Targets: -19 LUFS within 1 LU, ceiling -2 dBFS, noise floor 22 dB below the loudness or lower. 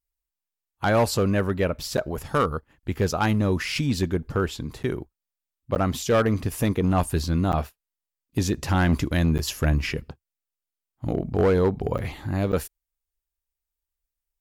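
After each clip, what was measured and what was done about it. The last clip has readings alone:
clipped samples 1.0%; clipping level -14.5 dBFS; dropouts 7; longest dropout 9.0 ms; loudness -25.0 LUFS; peak level -14.5 dBFS; loudness target -19.0 LUFS
-> clip repair -14.5 dBFS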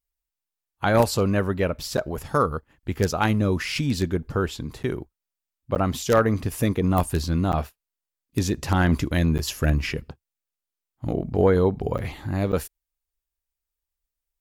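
clipped samples 0.0%; dropouts 7; longest dropout 9.0 ms
-> interpolate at 1.97/4.83/5.75/7.52/9.38/11.98/12.52 s, 9 ms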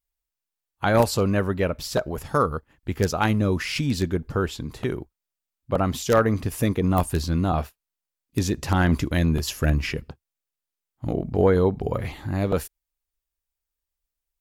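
dropouts 0; loudness -24.0 LUFS; peak level -5.5 dBFS; loudness target -19.0 LUFS
-> trim +5 dB; peak limiter -2 dBFS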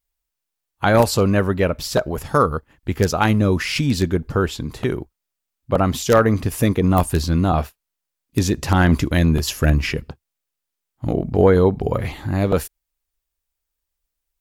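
loudness -19.5 LUFS; peak level -2.0 dBFS; noise floor -82 dBFS

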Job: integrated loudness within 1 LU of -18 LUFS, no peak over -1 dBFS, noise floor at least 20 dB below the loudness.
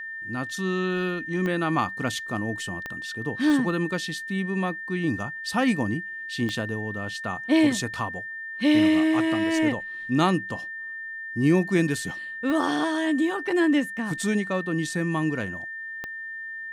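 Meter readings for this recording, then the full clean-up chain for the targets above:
clicks found 6; steady tone 1.8 kHz; tone level -33 dBFS; loudness -26.0 LUFS; peak level -10.0 dBFS; loudness target -18.0 LUFS
-> de-click; band-stop 1.8 kHz, Q 30; trim +8 dB

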